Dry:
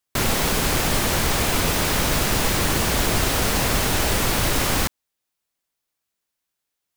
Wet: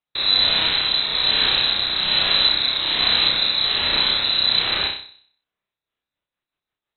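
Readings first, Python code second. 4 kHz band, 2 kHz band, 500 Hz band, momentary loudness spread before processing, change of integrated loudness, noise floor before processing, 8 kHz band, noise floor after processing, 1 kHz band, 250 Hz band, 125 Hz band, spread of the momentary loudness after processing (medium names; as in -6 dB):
+11.0 dB, 0.0 dB, -8.5 dB, 1 LU, +4.0 dB, -81 dBFS, under -40 dB, under -85 dBFS, -4.5 dB, -12.0 dB, -15.0 dB, 4 LU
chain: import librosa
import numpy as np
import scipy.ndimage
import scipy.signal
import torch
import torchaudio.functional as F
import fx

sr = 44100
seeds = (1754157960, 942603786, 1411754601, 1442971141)

y = fx.room_flutter(x, sr, wall_m=5.4, rt60_s=0.57)
y = fx.rotary_switch(y, sr, hz=1.2, then_hz=6.0, switch_at_s=5.46)
y = fx.freq_invert(y, sr, carrier_hz=4000)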